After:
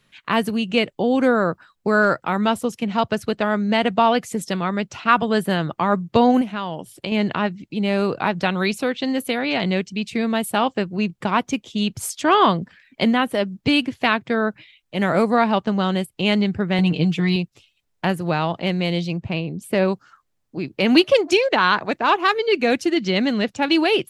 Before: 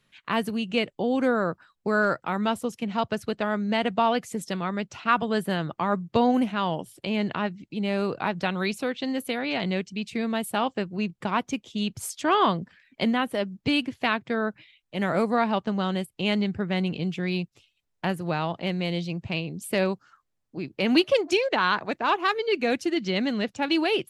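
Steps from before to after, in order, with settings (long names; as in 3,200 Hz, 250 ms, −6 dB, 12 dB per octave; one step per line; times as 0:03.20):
0:06.41–0:07.12: downward compressor 3 to 1, threshold −31 dBFS, peak gain reduction 8 dB
0:16.78–0:17.36: comb filter 6.5 ms, depth 82%
0:19.17–0:19.88: high-shelf EQ 2,500 Hz −9 dB
level +6 dB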